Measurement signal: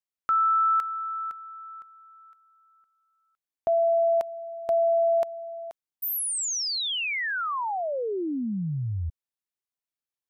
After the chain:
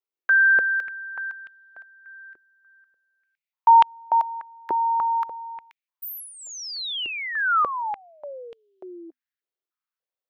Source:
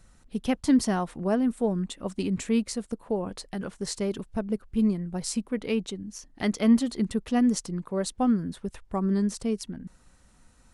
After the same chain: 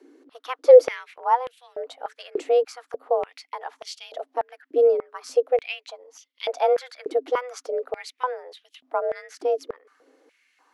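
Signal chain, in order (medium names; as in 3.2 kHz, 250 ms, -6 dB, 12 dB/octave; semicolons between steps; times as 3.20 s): frequency shift +250 Hz; peaking EQ 8.9 kHz -15 dB 0.77 oct; step-sequenced high-pass 3.4 Hz 370–3100 Hz; trim -1.5 dB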